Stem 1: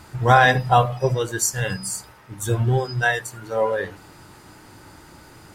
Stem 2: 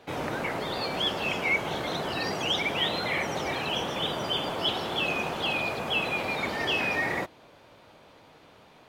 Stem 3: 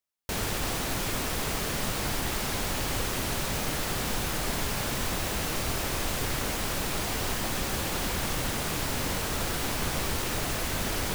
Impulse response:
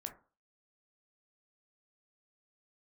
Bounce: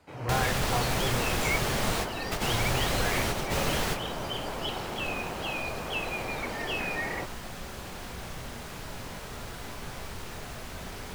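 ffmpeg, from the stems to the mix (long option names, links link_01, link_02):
-filter_complex "[0:a]adynamicequalizer=threshold=0.0224:dfrequency=120:dqfactor=2.4:tfrequency=120:tqfactor=2.4:attack=5:release=100:ratio=0.375:range=2:mode=boostabove:tftype=bell,volume=-17dB,asplit=2[link_01][link_02];[1:a]bandreject=frequency=3500:width=7.1,dynaudnorm=framelen=170:gausssize=3:maxgain=7dB,volume=-11.5dB[link_03];[2:a]equalizer=frequency=300:width=4.6:gain=-5,volume=0dB,asplit=2[link_04][link_05];[link_05]volume=-6.5dB[link_06];[link_02]apad=whole_len=491524[link_07];[link_04][link_07]sidechaingate=range=-33dB:threshold=-51dB:ratio=16:detection=peak[link_08];[3:a]atrim=start_sample=2205[link_09];[link_06][link_09]afir=irnorm=-1:irlink=0[link_10];[link_01][link_03][link_08][link_10]amix=inputs=4:normalize=0,highshelf=frequency=7300:gain=-6.5"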